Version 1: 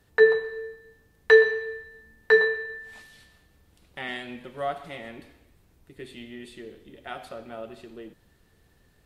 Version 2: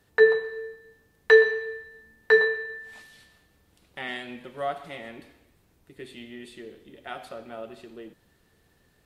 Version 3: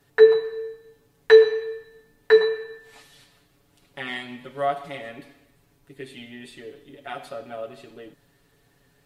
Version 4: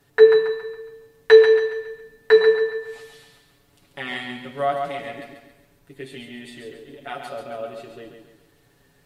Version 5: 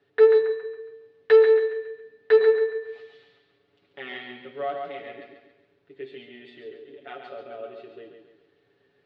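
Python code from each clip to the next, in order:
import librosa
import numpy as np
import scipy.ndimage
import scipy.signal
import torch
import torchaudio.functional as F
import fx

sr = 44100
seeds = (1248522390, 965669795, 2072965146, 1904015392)

y1 = fx.low_shelf(x, sr, hz=84.0, db=-8.5)
y2 = y1 + 0.94 * np.pad(y1, (int(7.1 * sr / 1000.0), 0))[:len(y1)]
y3 = fx.echo_feedback(y2, sr, ms=138, feedback_pct=40, wet_db=-6.0)
y3 = y3 * librosa.db_to_amplitude(1.5)
y4 = fx.tube_stage(y3, sr, drive_db=9.0, bias=0.35)
y4 = fx.cabinet(y4, sr, low_hz=130.0, low_slope=12, high_hz=3900.0, hz=(150.0, 240.0, 410.0, 960.0), db=(-8, -4, 8, -6))
y4 = y4 * librosa.db_to_amplitude(-5.5)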